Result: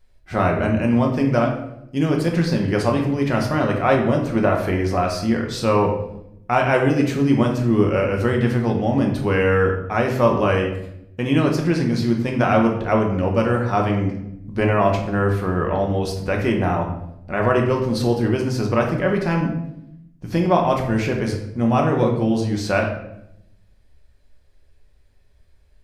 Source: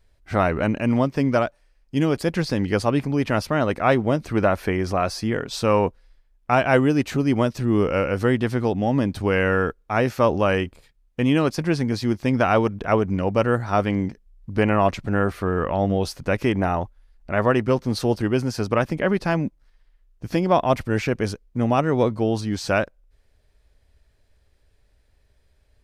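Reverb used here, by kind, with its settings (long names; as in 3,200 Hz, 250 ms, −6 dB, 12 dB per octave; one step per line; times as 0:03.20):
rectangular room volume 220 cubic metres, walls mixed, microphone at 0.98 metres
level −1.5 dB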